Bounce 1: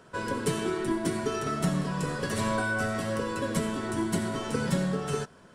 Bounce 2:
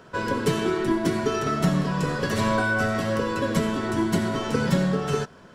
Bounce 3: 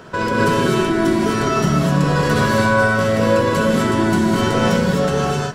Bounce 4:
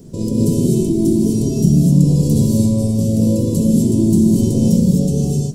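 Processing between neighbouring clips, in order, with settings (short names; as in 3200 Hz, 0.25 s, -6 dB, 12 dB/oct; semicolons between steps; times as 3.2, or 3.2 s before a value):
bell 9100 Hz -11 dB 0.48 oct; gain +5.5 dB
in parallel at -0.5 dB: negative-ratio compressor -29 dBFS, ratio -0.5; on the sum: non-linear reverb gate 0.28 s rising, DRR -2.5 dB
Chebyshev band-stop 250–8100 Hz, order 2; added noise brown -56 dBFS; gain +6 dB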